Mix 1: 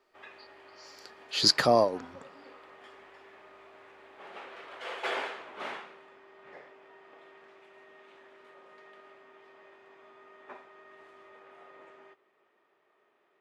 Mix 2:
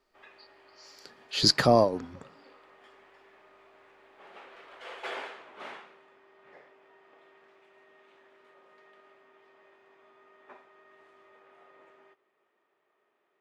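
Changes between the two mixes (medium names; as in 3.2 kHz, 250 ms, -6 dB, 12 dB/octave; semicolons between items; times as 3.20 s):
speech: add bass shelf 230 Hz +10.5 dB; background -4.5 dB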